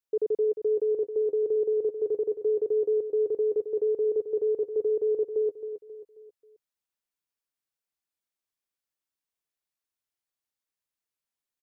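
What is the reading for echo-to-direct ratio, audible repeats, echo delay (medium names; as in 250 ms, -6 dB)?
-8.5 dB, 4, 268 ms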